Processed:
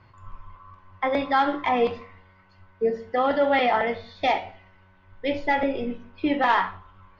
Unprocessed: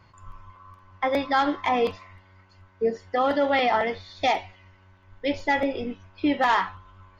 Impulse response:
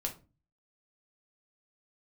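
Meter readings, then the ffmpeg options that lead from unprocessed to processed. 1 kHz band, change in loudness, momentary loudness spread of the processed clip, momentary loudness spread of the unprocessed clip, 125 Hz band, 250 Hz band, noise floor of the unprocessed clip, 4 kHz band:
+1.0 dB, +0.5 dB, 11 LU, 8 LU, 0.0 dB, 0.0 dB, -56 dBFS, -1.5 dB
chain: -filter_complex "[0:a]lowpass=3800,asplit=2[s0][s1];[1:a]atrim=start_sample=2205,asetrate=25578,aresample=44100[s2];[s1][s2]afir=irnorm=-1:irlink=0,volume=0.376[s3];[s0][s3]amix=inputs=2:normalize=0,volume=0.708"

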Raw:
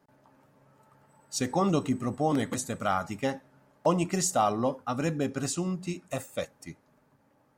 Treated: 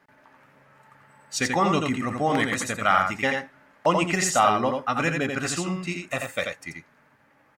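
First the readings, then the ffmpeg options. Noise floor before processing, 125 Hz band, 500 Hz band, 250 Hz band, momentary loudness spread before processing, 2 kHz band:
-67 dBFS, +1.5 dB, +3.5 dB, +2.0 dB, 10 LU, +14.0 dB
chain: -af "equalizer=f=2000:t=o:w=1.7:g=14.5,aecho=1:1:86:0.596"

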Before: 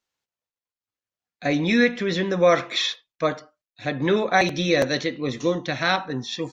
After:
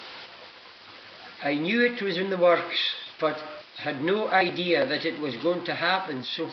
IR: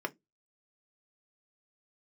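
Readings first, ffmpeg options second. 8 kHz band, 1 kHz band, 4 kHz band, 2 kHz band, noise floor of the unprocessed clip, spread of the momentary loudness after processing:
no reading, -2.0 dB, -2.0 dB, -2.0 dB, under -85 dBFS, 21 LU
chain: -filter_complex "[0:a]aeval=exprs='val(0)+0.5*0.0355*sgn(val(0))':c=same,highpass=f=250:p=1,asplit=2[s0][s1];[1:a]atrim=start_sample=2205[s2];[s1][s2]afir=irnorm=-1:irlink=0,volume=0.133[s3];[s0][s3]amix=inputs=2:normalize=0,aresample=11025,aresample=44100,volume=0.596" -ar 32000 -c:a libvorbis -b:a 48k

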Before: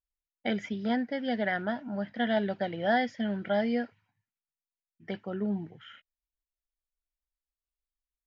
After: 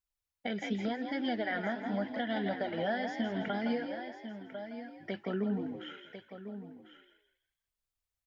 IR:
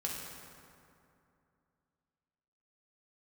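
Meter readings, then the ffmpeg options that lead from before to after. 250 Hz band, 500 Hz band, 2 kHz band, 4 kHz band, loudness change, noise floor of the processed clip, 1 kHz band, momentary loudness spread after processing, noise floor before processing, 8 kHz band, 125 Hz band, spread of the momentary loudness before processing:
-3.0 dB, -4.0 dB, -3.5 dB, -2.5 dB, -5.0 dB, under -85 dBFS, -4.5 dB, 12 LU, under -85 dBFS, no reading, -2.5 dB, 10 LU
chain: -filter_complex "[0:a]lowshelf=f=210:g=-4.5,acompressor=threshold=0.0316:ratio=6,asplit=2[s0][s1];[s1]aecho=0:1:1047:0.237[s2];[s0][s2]amix=inputs=2:normalize=0,flanger=delay=0.8:depth=3.9:regen=-48:speed=0.84:shape=sinusoidal,asplit=2[s3][s4];[s4]asplit=4[s5][s6][s7][s8];[s5]adelay=164,afreqshift=53,volume=0.376[s9];[s6]adelay=328,afreqshift=106,volume=0.127[s10];[s7]adelay=492,afreqshift=159,volume=0.0437[s11];[s8]adelay=656,afreqshift=212,volume=0.0148[s12];[s9][s10][s11][s12]amix=inputs=4:normalize=0[s13];[s3][s13]amix=inputs=2:normalize=0,alimiter=level_in=2:limit=0.0631:level=0:latency=1:release=247,volume=0.501,volume=2.11"

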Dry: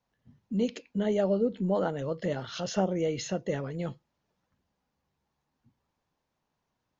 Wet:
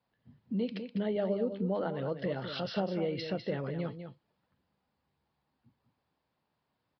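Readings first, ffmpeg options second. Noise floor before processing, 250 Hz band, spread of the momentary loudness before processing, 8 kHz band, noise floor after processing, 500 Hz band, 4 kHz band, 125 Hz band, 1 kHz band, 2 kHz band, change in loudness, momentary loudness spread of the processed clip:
-82 dBFS, -3.5 dB, 7 LU, no reading, -82 dBFS, -4.0 dB, -1.5 dB, -3.0 dB, -4.0 dB, -2.0 dB, -4.0 dB, 6 LU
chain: -af "highpass=66,acompressor=threshold=0.0251:ratio=2,aecho=1:1:201:0.355,aresample=11025,aresample=44100"

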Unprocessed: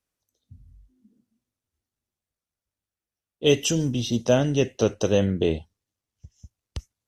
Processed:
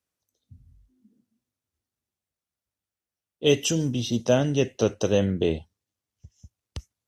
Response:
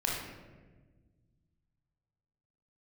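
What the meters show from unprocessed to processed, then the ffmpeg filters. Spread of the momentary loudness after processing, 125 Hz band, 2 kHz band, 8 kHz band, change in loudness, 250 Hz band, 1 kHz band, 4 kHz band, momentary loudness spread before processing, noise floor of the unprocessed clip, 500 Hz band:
15 LU, -1.0 dB, -1.0 dB, -1.0 dB, -1.0 dB, -1.0 dB, -1.0 dB, -1.0 dB, 14 LU, under -85 dBFS, -1.0 dB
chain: -af "highpass=59,volume=0.891"

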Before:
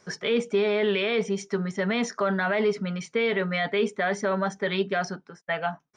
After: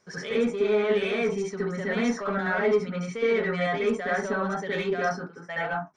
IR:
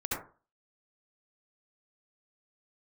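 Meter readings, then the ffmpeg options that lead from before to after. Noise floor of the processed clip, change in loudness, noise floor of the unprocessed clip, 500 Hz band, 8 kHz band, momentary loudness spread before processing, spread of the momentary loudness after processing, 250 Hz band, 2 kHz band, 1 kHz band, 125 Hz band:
-47 dBFS, -0.5 dB, -63 dBFS, 0.0 dB, -3.5 dB, 6 LU, 6 LU, -0.5 dB, -0.5 dB, 0.0 dB, -1.5 dB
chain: -filter_complex "[0:a]asoftclip=type=tanh:threshold=0.141[s0];[1:a]atrim=start_sample=2205,atrim=end_sample=6174[s1];[s0][s1]afir=irnorm=-1:irlink=0,volume=0.562"

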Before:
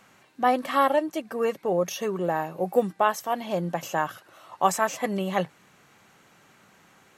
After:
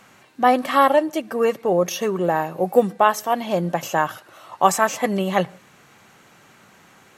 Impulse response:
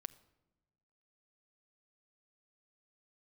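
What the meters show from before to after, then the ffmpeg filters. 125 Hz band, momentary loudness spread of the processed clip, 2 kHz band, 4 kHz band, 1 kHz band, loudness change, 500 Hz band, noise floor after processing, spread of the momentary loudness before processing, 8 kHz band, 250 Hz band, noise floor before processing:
+5.5 dB, 6 LU, +6.0 dB, +6.0 dB, +6.0 dB, +6.0 dB, +6.0 dB, -52 dBFS, 6 LU, +6.0 dB, +6.0 dB, -58 dBFS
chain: -filter_complex "[0:a]asplit=2[s0][s1];[1:a]atrim=start_sample=2205,afade=t=out:st=0.18:d=0.01,atrim=end_sample=8379,asetrate=32193,aresample=44100[s2];[s1][s2]afir=irnorm=-1:irlink=0,volume=0.794[s3];[s0][s3]amix=inputs=2:normalize=0,volume=1.26"

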